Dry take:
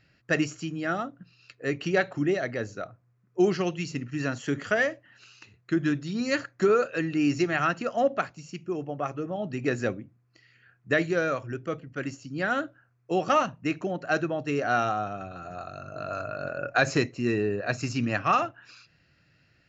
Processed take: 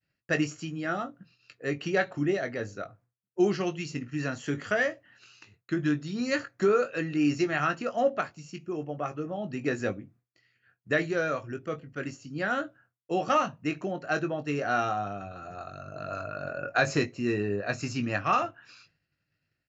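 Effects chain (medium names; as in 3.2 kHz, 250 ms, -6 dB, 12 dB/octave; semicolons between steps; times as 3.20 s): doubling 20 ms -8.5 dB; expander -53 dBFS; trim -2.5 dB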